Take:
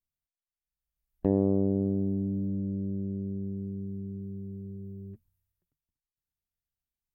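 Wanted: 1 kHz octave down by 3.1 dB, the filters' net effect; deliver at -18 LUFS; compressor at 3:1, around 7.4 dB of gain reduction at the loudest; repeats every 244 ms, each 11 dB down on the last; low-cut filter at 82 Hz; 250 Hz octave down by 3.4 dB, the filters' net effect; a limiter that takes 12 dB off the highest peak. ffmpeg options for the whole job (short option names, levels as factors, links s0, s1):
-af "highpass=82,equalizer=f=250:t=o:g=-4.5,equalizer=f=1000:t=o:g=-4.5,acompressor=threshold=0.0251:ratio=3,alimiter=level_in=2.51:limit=0.0631:level=0:latency=1,volume=0.398,aecho=1:1:244|488|732:0.282|0.0789|0.0221,volume=15"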